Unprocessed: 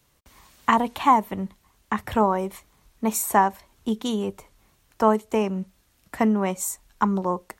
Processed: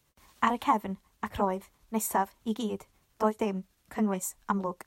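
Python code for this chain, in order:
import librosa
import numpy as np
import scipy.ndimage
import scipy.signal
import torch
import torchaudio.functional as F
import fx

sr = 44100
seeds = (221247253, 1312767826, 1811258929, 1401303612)

y = fx.stretch_grains(x, sr, factor=0.64, grain_ms=152.0)
y = y * 10.0 ** (-5.0 / 20.0)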